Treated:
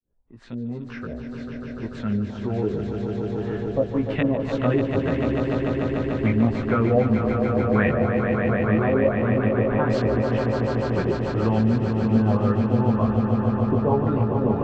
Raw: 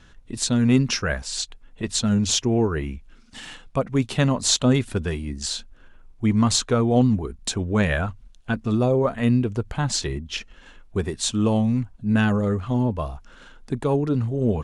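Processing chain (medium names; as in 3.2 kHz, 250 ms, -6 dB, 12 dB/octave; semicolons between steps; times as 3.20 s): fade-in on the opening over 4.87 s; LFO low-pass saw up 1.9 Hz 360–2500 Hz; chorus 0.18 Hz, delay 17 ms, depth 2.1 ms; on a send: echo with a slow build-up 147 ms, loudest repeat 5, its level -8 dB; on the sum: three bands compressed up and down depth 40%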